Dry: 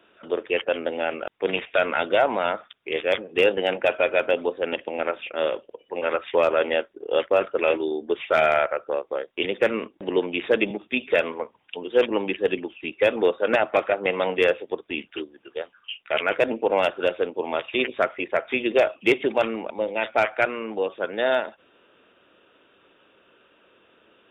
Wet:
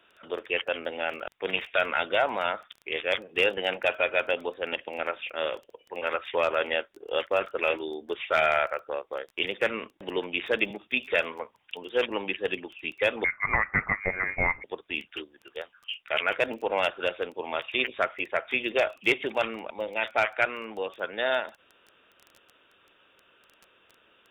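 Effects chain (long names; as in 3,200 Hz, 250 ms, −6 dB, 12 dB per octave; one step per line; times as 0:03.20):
parametric band 300 Hz −9 dB 2.8 octaves
surface crackle 12 per second −37 dBFS
0:13.24–0:14.64: voice inversion scrambler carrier 2,600 Hz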